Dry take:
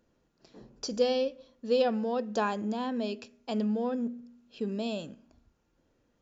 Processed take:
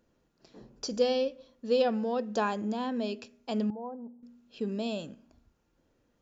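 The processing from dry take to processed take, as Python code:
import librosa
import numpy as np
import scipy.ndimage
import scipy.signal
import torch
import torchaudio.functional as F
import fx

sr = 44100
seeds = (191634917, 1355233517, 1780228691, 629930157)

y = fx.ladder_lowpass(x, sr, hz=950.0, resonance_pct=75, at=(3.7, 4.23))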